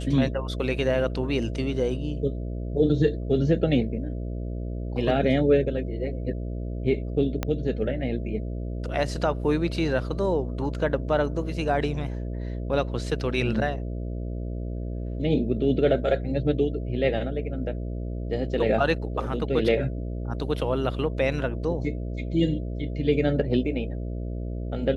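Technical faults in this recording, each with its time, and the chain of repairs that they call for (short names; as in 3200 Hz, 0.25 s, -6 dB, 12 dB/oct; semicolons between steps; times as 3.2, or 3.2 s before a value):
buzz 60 Hz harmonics 11 -31 dBFS
7.43 pop -12 dBFS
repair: de-click; de-hum 60 Hz, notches 11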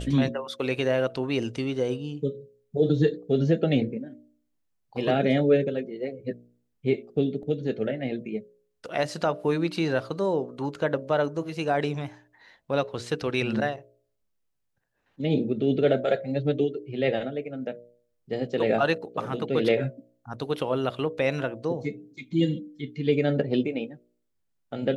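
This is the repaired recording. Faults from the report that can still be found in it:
7.43 pop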